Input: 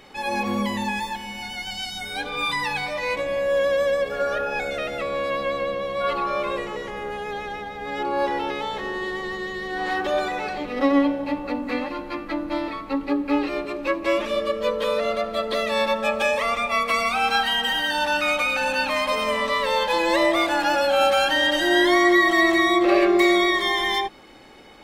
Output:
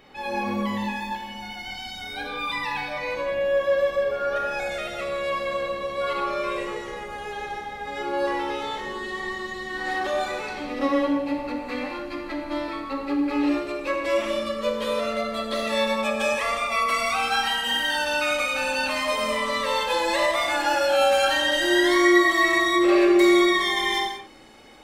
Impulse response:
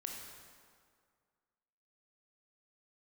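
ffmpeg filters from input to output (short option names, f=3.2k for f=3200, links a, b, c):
-filter_complex "[0:a]asetnsamples=n=441:p=0,asendcmd='4.36 equalizer g 6',equalizer=f=8.5k:w=0.78:g=-7.5[a];[1:a]atrim=start_sample=2205,afade=t=out:st=0.25:d=0.01,atrim=end_sample=11466[b];[a][b]afir=irnorm=-1:irlink=0"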